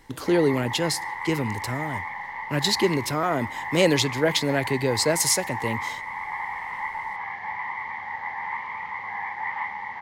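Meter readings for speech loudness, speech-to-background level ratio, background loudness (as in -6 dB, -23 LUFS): -24.0 LUFS, 7.5 dB, -31.5 LUFS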